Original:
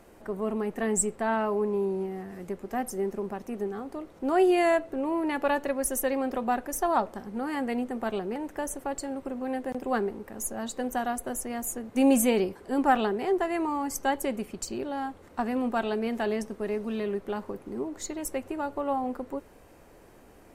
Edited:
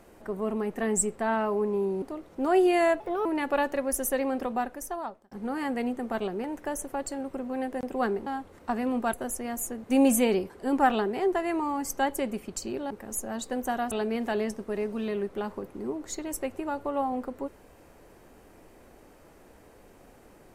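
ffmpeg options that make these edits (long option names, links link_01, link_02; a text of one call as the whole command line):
ffmpeg -i in.wav -filter_complex "[0:a]asplit=9[link_01][link_02][link_03][link_04][link_05][link_06][link_07][link_08][link_09];[link_01]atrim=end=2.022[link_10];[link_02]atrim=start=3.858:end=4.844[link_11];[link_03]atrim=start=4.84:end=5.17,asetpts=PTS-STARTPTS,asetrate=57330,aresample=44100[link_12];[link_04]atrim=start=5.166:end=7.23,asetpts=PTS-STARTPTS,afade=type=out:start_time=1.134:duration=0.93[link_13];[link_05]atrim=start=7.23:end=10.182,asetpts=PTS-STARTPTS,afade=type=in:duration=0.004:curve=hsin[link_14];[link_06]atrim=start=14.958:end=15.832[link_15];[link_07]atrim=start=11.188:end=14.962[link_16];[link_08]atrim=start=10.178:end=11.192[link_17];[link_09]atrim=start=15.828[link_18];[link_10][link_11]acrossfade=duration=0.004:curve1=hsin:curve2=hsin[link_19];[link_19][link_12]acrossfade=duration=0.004:curve1=hsin:curve2=hsin[link_20];[link_13][link_14]concat=n=2:v=0:a=1[link_21];[link_20][link_21]acrossfade=duration=0.004:curve1=hsin:curve2=hsin[link_22];[link_22][link_15]acrossfade=duration=0.004:curve1=hsin:curve2=hsin[link_23];[link_23][link_16]acrossfade=duration=0.004:curve1=hsin:curve2=hsin[link_24];[link_24][link_17]acrossfade=duration=0.004:curve1=hsin:curve2=hsin[link_25];[link_25][link_18]acrossfade=duration=0.004:curve1=hsin:curve2=hsin" out.wav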